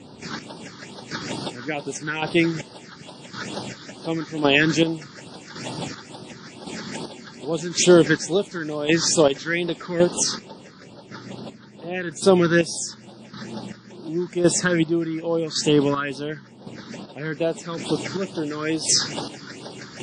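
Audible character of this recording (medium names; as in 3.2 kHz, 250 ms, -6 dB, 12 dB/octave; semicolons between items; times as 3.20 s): phasing stages 6, 2.3 Hz, lowest notch 660–2200 Hz; chopped level 0.9 Hz, depth 65%, duty 35%; WMA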